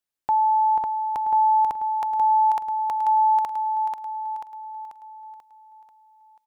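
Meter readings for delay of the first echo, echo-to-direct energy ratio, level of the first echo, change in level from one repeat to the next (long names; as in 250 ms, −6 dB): 488 ms, −3.5 dB, −5.0 dB, −6.0 dB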